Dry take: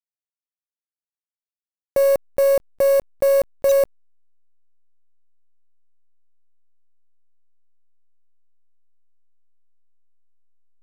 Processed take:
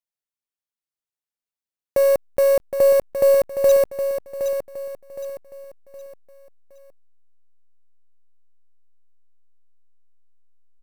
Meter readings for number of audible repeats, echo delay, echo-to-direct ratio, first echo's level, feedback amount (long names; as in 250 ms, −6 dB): 4, 766 ms, −8.0 dB, −8.5 dB, 38%